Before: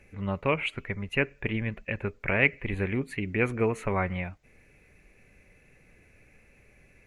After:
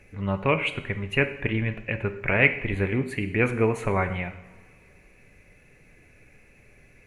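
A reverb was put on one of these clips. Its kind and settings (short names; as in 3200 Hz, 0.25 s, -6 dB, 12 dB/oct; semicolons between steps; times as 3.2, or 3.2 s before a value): two-slope reverb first 0.75 s, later 2.7 s, from -19 dB, DRR 8 dB; gain +3 dB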